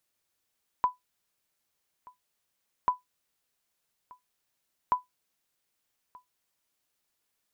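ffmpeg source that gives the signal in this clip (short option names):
-f lavfi -i "aevalsrc='0.168*(sin(2*PI*997*mod(t,2.04))*exp(-6.91*mod(t,2.04)/0.15)+0.0562*sin(2*PI*997*max(mod(t,2.04)-1.23,0))*exp(-6.91*max(mod(t,2.04)-1.23,0)/0.15))':d=6.12:s=44100"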